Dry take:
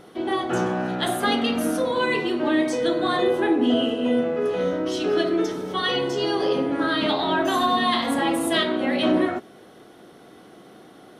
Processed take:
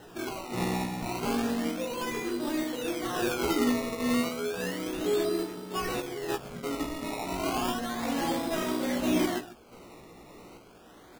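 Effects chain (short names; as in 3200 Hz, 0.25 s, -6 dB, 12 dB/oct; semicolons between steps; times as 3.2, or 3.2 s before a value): delta modulation 32 kbps, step -37.5 dBFS; random-step tremolo; echo 0.147 s -15 dB; spectral gain 6.36–6.63, 240–2700 Hz -20 dB; decimation with a swept rate 19×, swing 100% 0.32 Hz; doubler 17 ms -5 dB; gain -6 dB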